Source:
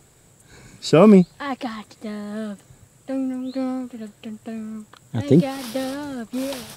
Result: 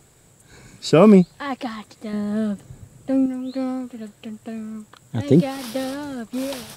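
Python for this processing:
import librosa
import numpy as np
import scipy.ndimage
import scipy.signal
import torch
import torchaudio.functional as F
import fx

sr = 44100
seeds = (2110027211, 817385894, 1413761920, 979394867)

y = fx.low_shelf(x, sr, hz=460.0, db=9.0, at=(2.13, 3.26))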